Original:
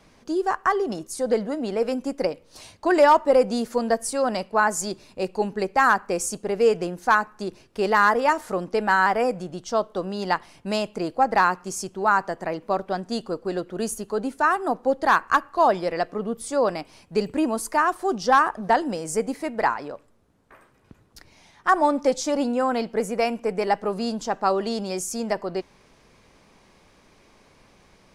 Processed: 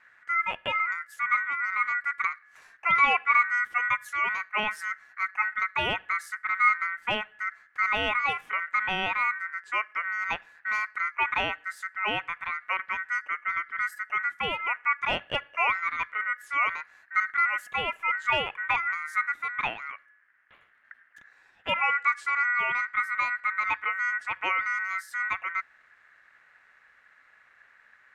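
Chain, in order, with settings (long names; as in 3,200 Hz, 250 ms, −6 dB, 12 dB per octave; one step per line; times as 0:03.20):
tilt shelving filter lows +10 dB, about 940 Hz
ring modulation 1,700 Hz
level −6.5 dB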